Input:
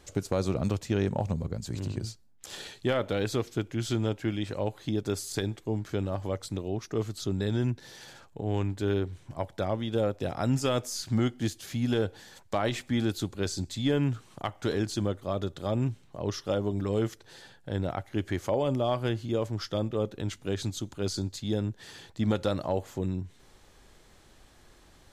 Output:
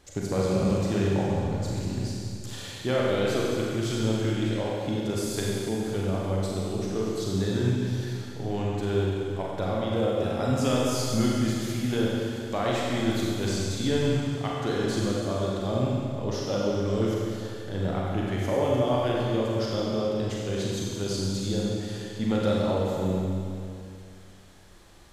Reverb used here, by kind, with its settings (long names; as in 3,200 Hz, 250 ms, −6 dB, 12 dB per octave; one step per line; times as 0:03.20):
four-comb reverb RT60 2.5 s, combs from 32 ms, DRR −4.5 dB
level −2 dB